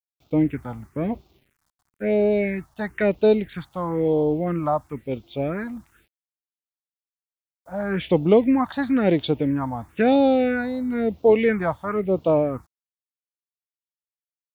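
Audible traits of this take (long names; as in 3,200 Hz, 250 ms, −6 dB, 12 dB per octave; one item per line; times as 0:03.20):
a quantiser's noise floor 10 bits, dither none
phaser sweep stages 4, 1 Hz, lowest notch 390–1,800 Hz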